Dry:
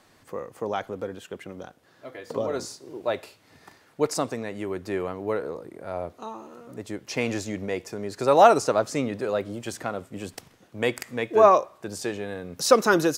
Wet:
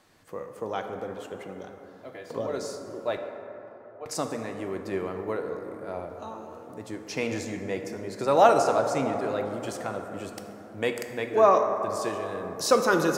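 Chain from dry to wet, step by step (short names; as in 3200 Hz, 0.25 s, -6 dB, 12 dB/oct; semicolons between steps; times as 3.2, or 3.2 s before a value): 3.17–4.06 vowel filter a; plate-style reverb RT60 3.7 s, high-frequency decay 0.3×, DRR 4.5 dB; gain -3.5 dB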